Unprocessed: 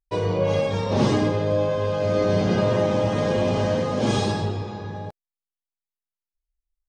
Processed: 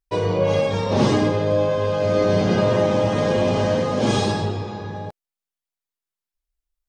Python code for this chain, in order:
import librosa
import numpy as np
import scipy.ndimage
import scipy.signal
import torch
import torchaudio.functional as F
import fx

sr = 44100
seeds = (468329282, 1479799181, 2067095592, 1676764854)

y = fx.low_shelf(x, sr, hz=140.0, db=-3.0)
y = F.gain(torch.from_numpy(y), 3.0).numpy()